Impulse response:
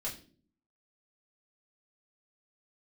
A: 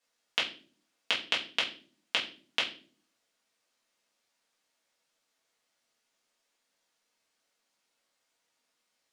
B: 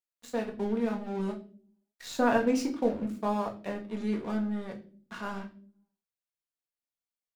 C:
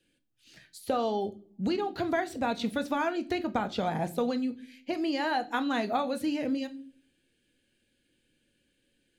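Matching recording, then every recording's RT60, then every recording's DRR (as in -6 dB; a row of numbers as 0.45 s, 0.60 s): A; no single decay rate, no single decay rate, no single decay rate; -5.5 dB, 1.0 dB, 9.0 dB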